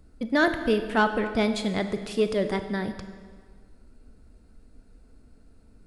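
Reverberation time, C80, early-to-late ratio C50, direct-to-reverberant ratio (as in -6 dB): 1.7 s, 11.0 dB, 9.5 dB, 8.5 dB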